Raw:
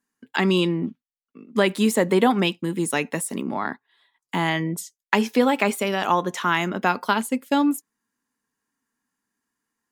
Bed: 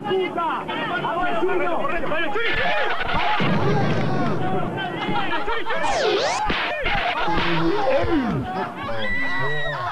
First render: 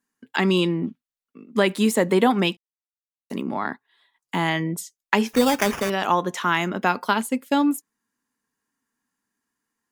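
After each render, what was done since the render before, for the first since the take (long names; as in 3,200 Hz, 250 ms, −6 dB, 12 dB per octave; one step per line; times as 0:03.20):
0:02.57–0:03.30: silence
0:05.33–0:05.90: sample-rate reduction 4,100 Hz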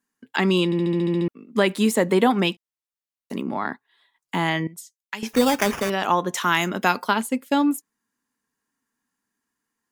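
0:00.65: stutter in place 0.07 s, 9 plays
0:04.67–0:05.23: guitar amp tone stack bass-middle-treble 5-5-5
0:06.33–0:07.02: high-shelf EQ 5,500 Hz → 3,400 Hz +11.5 dB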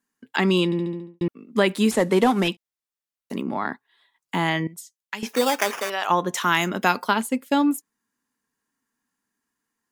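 0:00.60–0:01.21: fade out and dull
0:01.91–0:02.48: variable-slope delta modulation 64 kbit/s
0:05.25–0:06.09: high-pass filter 310 Hz → 670 Hz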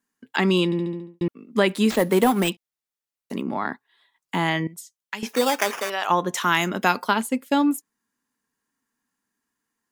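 0:01.90–0:02.50: bad sample-rate conversion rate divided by 4×, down none, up hold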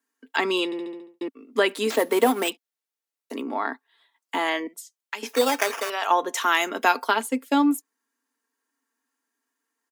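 elliptic high-pass filter 270 Hz, stop band 50 dB
comb filter 4.4 ms, depth 36%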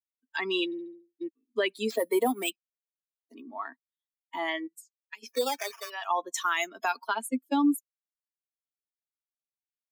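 spectral dynamics exaggerated over time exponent 2
brickwall limiter −17 dBFS, peak gain reduction 8.5 dB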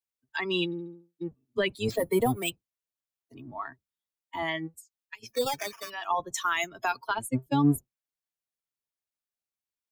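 sub-octave generator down 1 octave, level −2 dB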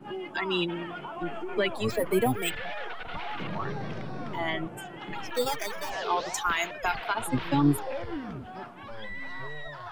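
mix in bed −15 dB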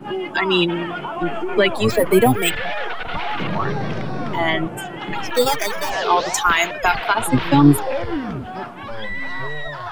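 level +11 dB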